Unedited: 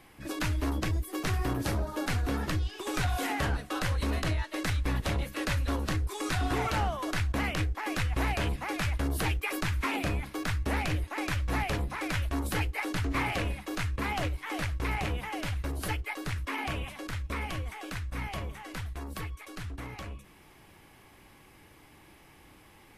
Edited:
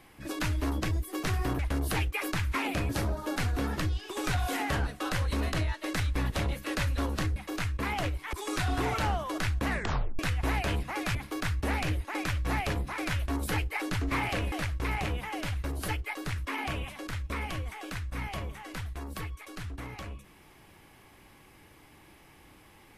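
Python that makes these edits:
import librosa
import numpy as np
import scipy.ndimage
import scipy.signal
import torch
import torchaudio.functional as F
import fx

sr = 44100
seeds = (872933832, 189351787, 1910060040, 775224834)

y = fx.edit(x, sr, fx.tape_stop(start_s=7.4, length_s=0.52),
    fx.move(start_s=8.88, length_s=1.3, to_s=1.59),
    fx.move(start_s=13.55, length_s=0.97, to_s=6.06), tone=tone)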